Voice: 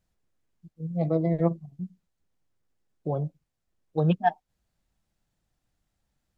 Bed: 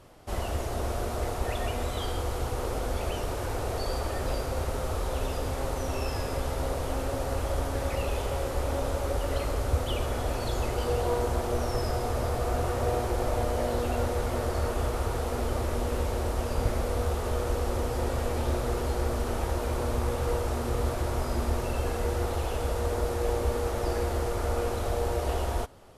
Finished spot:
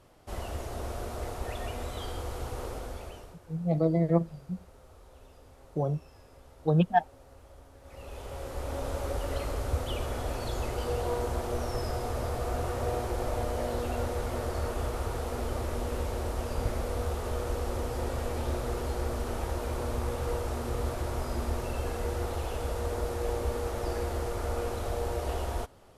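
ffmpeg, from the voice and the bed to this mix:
-filter_complex "[0:a]adelay=2700,volume=-0.5dB[a];[1:a]volume=14.5dB,afade=t=out:st=2.62:d=0.77:silence=0.125893,afade=t=in:st=7.82:d=1.17:silence=0.1[b];[a][b]amix=inputs=2:normalize=0"

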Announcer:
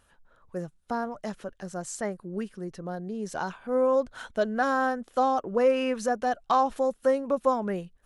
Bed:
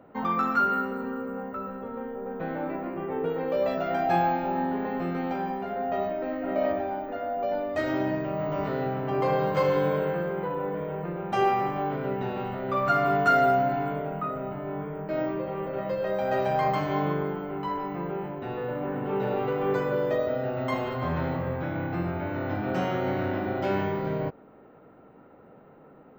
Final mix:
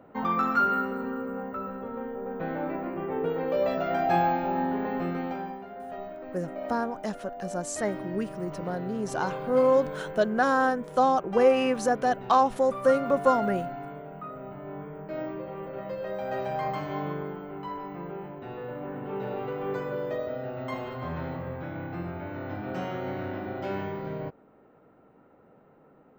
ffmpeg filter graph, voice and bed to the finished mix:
-filter_complex "[0:a]adelay=5800,volume=2dB[a];[1:a]volume=4.5dB,afade=t=out:st=5.03:d=0.64:silence=0.316228,afade=t=in:st=14.07:d=0.63:silence=0.595662[b];[a][b]amix=inputs=2:normalize=0"

